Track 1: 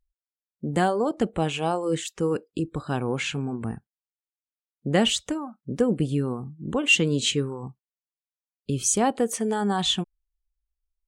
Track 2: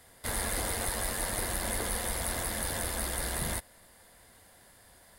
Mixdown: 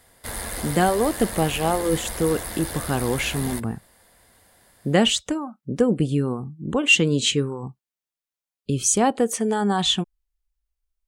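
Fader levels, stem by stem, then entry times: +3.0, +1.0 dB; 0.00, 0.00 s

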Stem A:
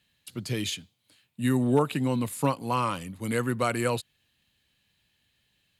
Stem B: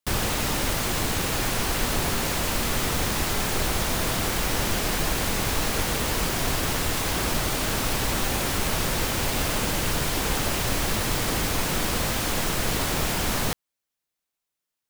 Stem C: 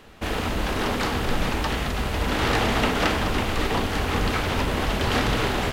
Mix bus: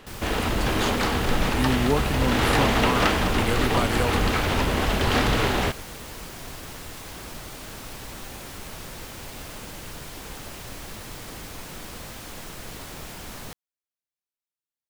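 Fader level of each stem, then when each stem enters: -1.0, -13.0, +1.0 dB; 0.15, 0.00, 0.00 s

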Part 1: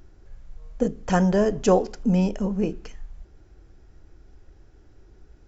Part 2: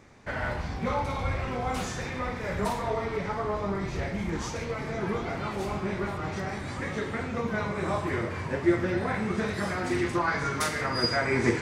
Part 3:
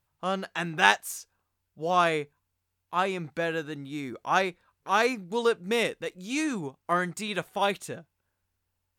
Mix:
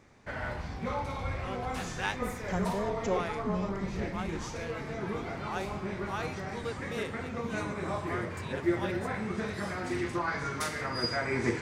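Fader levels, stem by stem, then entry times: -13.5, -5.0, -13.5 dB; 1.40, 0.00, 1.20 s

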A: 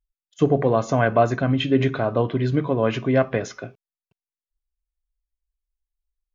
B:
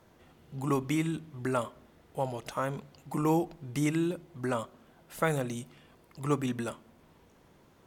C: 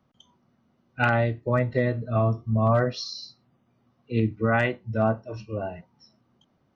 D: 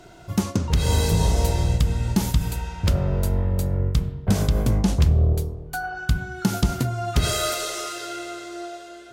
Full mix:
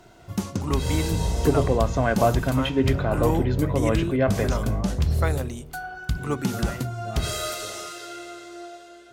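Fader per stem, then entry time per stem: -3.0, +1.0, -15.5, -5.0 dB; 1.05, 0.00, 2.10, 0.00 s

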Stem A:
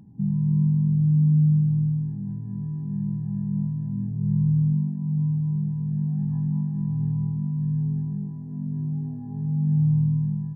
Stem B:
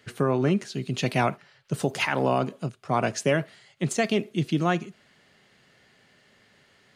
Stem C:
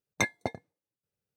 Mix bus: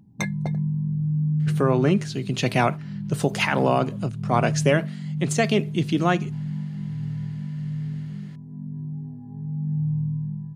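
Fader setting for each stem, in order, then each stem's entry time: -4.5, +3.0, -2.5 dB; 0.00, 1.40, 0.00 s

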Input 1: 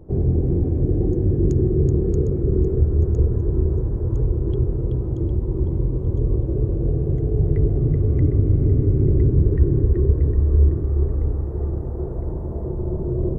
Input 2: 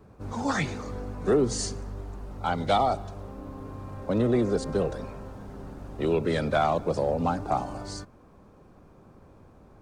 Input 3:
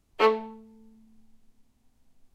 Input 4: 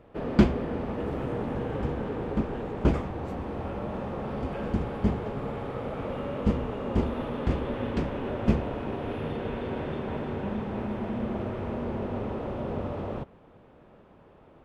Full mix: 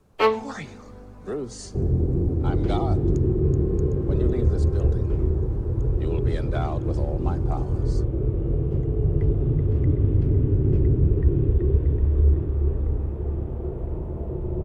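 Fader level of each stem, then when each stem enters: -3.0, -8.0, +2.0, -17.5 dB; 1.65, 0.00, 0.00, 2.25 s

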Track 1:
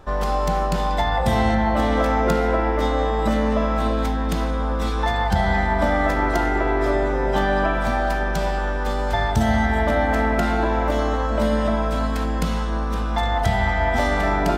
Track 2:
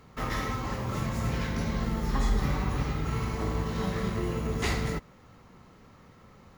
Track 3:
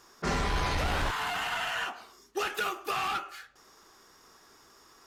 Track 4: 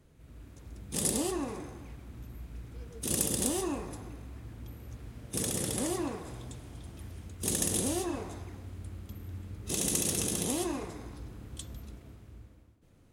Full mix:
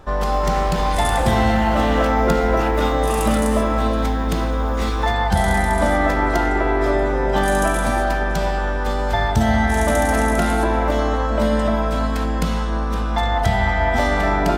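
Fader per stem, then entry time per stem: +2.0, -4.5, -1.0, -2.0 dB; 0.00, 0.15, 0.20, 0.00 s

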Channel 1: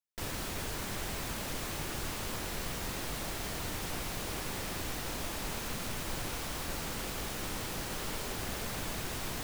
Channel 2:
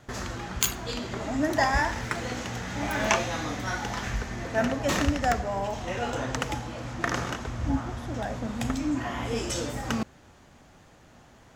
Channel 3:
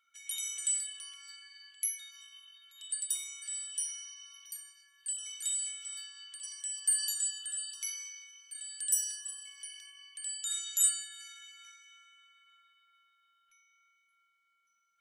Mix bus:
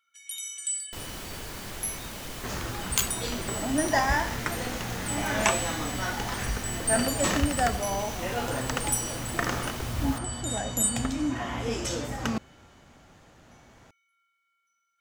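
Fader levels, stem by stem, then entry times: -1.0, -0.5, +0.5 dB; 0.75, 2.35, 0.00 s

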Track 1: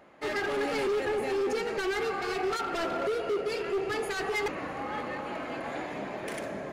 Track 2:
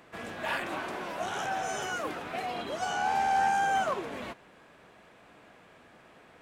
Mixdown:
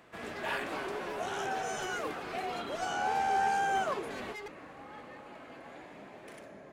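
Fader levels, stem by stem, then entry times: -13.5, -3.0 dB; 0.00, 0.00 s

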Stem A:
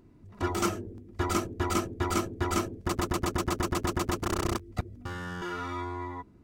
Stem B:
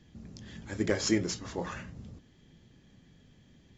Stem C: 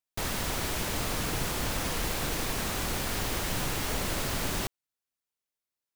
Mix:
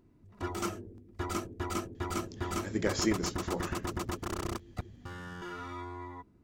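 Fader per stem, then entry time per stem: -6.5 dB, -2.0 dB, off; 0.00 s, 1.95 s, off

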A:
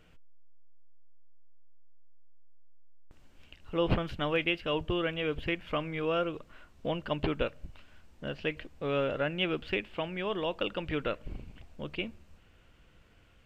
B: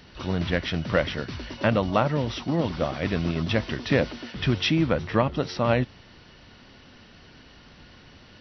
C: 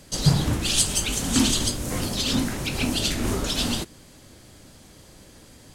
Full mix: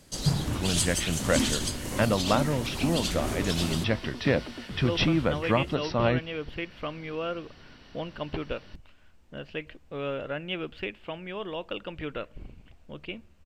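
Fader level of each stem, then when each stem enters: -2.5, -2.5, -6.5 dB; 1.10, 0.35, 0.00 s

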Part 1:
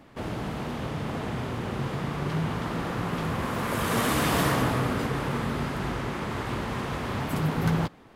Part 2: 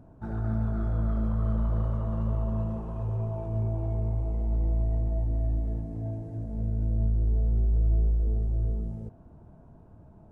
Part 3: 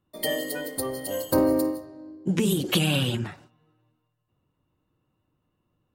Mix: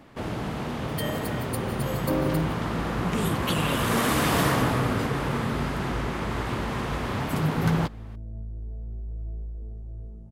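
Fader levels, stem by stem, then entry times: +1.5, -11.0, -6.0 dB; 0.00, 1.35, 0.75 s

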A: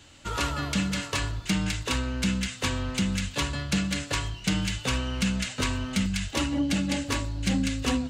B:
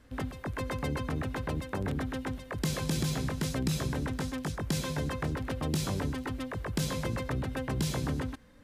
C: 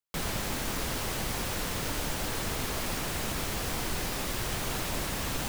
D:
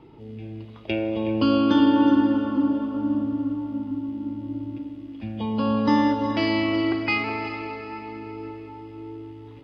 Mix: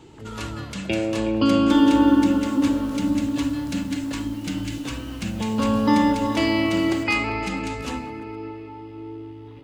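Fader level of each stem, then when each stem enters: -6.0, -14.0, -16.0, +1.5 dB; 0.00, 0.00, 1.55, 0.00 s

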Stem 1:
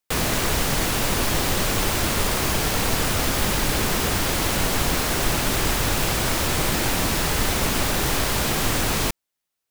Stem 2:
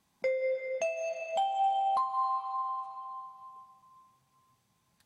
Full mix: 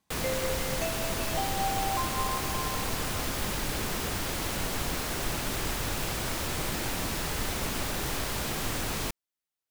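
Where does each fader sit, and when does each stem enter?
-9.5, -3.5 dB; 0.00, 0.00 s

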